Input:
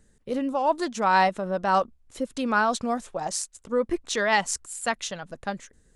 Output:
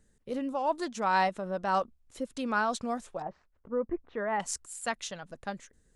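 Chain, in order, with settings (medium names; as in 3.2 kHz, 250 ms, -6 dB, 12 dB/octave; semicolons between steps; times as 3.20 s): 3.22–4.40 s: Bessel low-pass 1.2 kHz, order 4; trim -6 dB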